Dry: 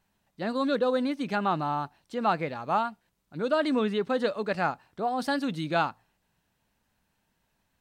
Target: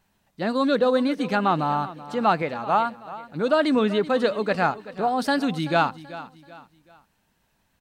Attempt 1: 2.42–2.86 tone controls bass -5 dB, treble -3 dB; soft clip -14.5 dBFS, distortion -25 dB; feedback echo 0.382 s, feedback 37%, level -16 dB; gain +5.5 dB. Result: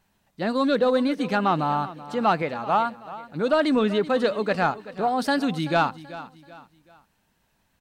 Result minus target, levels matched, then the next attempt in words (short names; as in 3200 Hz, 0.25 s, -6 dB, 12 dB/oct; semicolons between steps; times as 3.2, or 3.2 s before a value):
soft clip: distortion +13 dB
2.42–2.86 tone controls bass -5 dB, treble -3 dB; soft clip -7.5 dBFS, distortion -38 dB; feedback echo 0.382 s, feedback 37%, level -16 dB; gain +5.5 dB